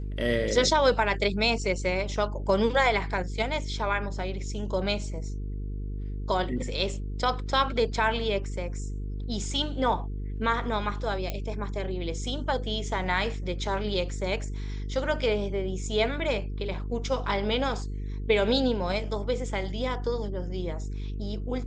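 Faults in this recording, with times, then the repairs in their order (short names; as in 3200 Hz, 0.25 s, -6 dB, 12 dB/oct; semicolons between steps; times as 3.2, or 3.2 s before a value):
buzz 50 Hz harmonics 9 -33 dBFS
11.3 pop -16 dBFS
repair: de-click; de-hum 50 Hz, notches 9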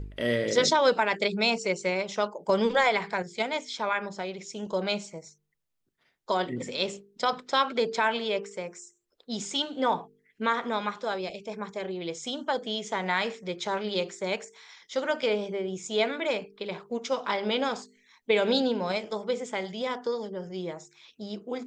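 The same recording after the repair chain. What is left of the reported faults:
none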